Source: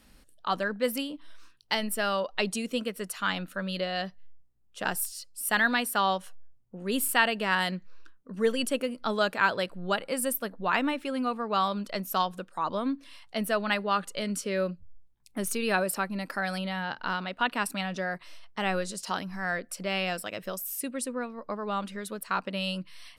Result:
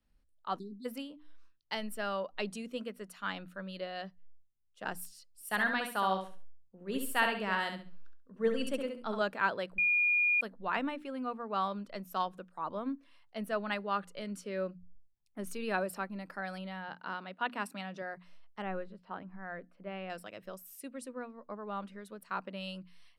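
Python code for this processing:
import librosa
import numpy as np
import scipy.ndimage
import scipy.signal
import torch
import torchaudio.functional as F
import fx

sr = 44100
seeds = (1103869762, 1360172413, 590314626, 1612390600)

y = fx.spec_erase(x, sr, start_s=0.59, length_s=0.26, low_hz=430.0, high_hz=3500.0)
y = fx.echo_feedback(y, sr, ms=68, feedback_pct=30, wet_db=-6.0, at=(5.28, 9.22))
y = fx.highpass(y, sr, hz=99.0, slope=12, at=(16.88, 18.02))
y = fx.air_absorb(y, sr, metres=440.0, at=(18.62, 20.1))
y = fx.edit(y, sr, fx.bleep(start_s=9.78, length_s=0.63, hz=2430.0, db=-16.5), tone=tone)
y = fx.peak_eq(y, sr, hz=13000.0, db=-9.0, octaves=2.6)
y = fx.hum_notches(y, sr, base_hz=60, count=5)
y = fx.band_widen(y, sr, depth_pct=40)
y = y * librosa.db_to_amplitude(-6.5)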